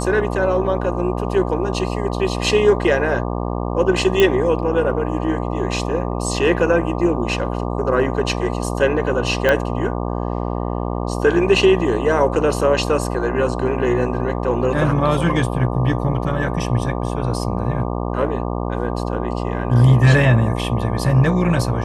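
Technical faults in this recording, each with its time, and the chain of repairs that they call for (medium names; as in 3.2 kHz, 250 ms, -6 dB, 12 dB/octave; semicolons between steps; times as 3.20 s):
buzz 60 Hz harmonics 20 -23 dBFS
4.20 s: pop -3 dBFS
9.49 s: pop -4 dBFS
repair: de-click; de-hum 60 Hz, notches 20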